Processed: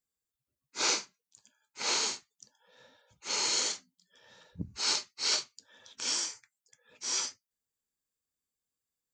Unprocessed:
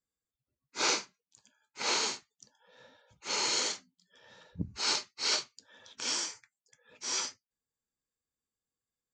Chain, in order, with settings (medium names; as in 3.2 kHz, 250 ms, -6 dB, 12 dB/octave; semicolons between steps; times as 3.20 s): treble shelf 5.1 kHz +7.5 dB; trim -2.5 dB